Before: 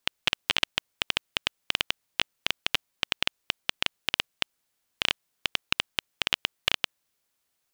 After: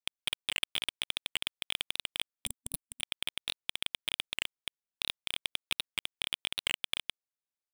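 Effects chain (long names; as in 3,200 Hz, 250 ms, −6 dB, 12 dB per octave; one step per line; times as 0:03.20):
dynamic equaliser 2,900 Hz, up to −6 dB, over −41 dBFS, Q 4.8
leveller curve on the samples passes 5
single-tap delay 254 ms −14 dB
gain on a spectral selection 0:02.46–0:03.01, 240–7,600 Hz −25 dB
brickwall limiter −12.5 dBFS, peak gain reduction 9 dB
leveller curve on the samples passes 3
parametric band 15,000 Hz −10 dB 0.2 octaves
wow of a warped record 78 rpm, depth 250 cents
level −6 dB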